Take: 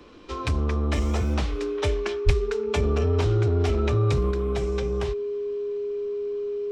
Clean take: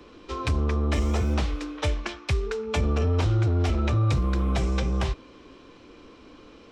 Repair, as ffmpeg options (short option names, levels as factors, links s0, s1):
-filter_complex "[0:a]bandreject=f=410:w=30,asplit=3[s0][s1][s2];[s0]afade=t=out:st=2.25:d=0.02[s3];[s1]highpass=f=140:w=0.5412,highpass=f=140:w=1.3066,afade=t=in:st=2.25:d=0.02,afade=t=out:st=2.37:d=0.02[s4];[s2]afade=t=in:st=2.37:d=0.02[s5];[s3][s4][s5]amix=inputs=3:normalize=0,asetnsamples=n=441:p=0,asendcmd='4.31 volume volume 4dB',volume=1"